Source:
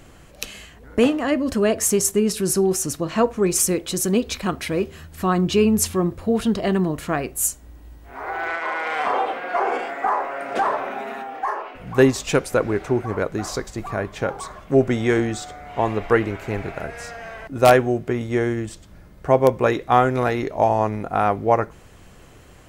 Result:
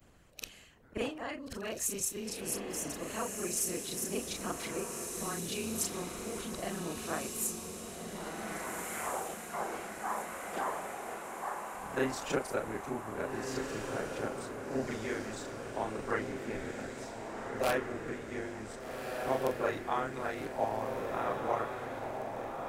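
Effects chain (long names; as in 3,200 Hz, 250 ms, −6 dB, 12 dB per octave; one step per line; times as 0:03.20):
every overlapping window played backwards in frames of 91 ms
harmonic and percussive parts rebalanced harmonic −13 dB
feedback delay with all-pass diffusion 1,583 ms, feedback 54%, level −4 dB
level −7.5 dB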